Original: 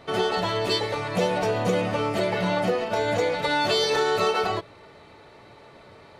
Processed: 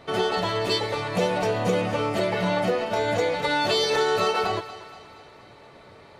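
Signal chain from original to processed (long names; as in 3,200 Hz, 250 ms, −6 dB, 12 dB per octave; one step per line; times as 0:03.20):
feedback echo with a high-pass in the loop 236 ms, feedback 56%, high-pass 420 Hz, level −14.5 dB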